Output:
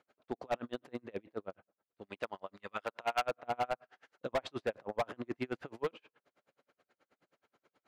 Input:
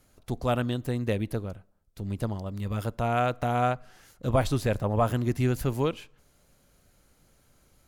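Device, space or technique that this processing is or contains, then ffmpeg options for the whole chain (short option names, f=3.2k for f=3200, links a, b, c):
helicopter radio: -filter_complex "[0:a]highpass=380,lowpass=2.5k,aeval=exprs='val(0)*pow(10,-38*(0.5-0.5*cos(2*PI*9.4*n/s))/20)':c=same,asoftclip=type=hard:threshold=-29.5dB,asettb=1/sr,asplit=3[a][b][c];[a]atrim=end=2.014[d];[b]atrim=start=2.01:end=3.22,asetpts=PTS-STARTPTS,afade=t=in:d=0.004:c=qsin,afade=t=out:st=1.206:d=0.004:c=qsin,tiltshelf=f=640:g=-7.5[e];[c]atrim=start=3.216[f];[d][e]acrossfade=d=0.004:c1=hsin:c2=qsin[g];[g][f]acrossfade=d=0.004:c1=qsin:c2=hsin,volume=2.5dB"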